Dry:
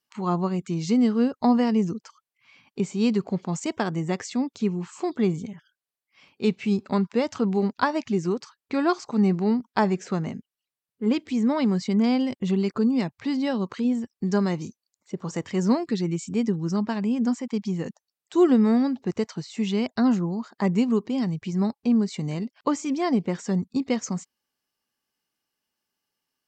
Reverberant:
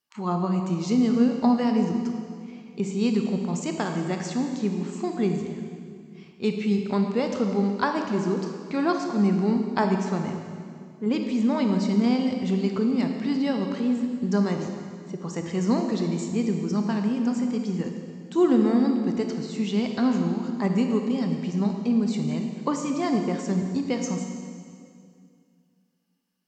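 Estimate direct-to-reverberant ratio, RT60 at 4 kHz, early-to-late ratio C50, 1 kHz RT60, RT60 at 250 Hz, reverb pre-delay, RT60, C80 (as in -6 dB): 3.5 dB, 2.1 s, 4.5 dB, 2.1 s, 2.6 s, 21 ms, 2.3 s, 6.0 dB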